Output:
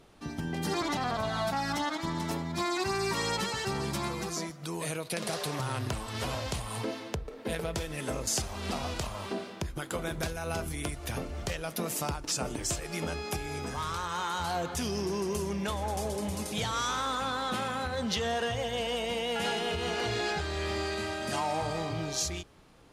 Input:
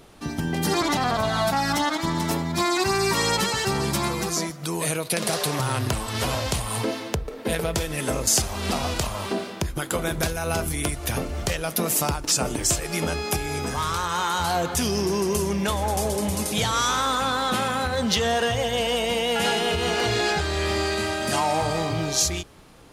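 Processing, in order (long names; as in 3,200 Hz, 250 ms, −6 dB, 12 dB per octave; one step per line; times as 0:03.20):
high-shelf EQ 10,000 Hz −8.5 dB
level −8 dB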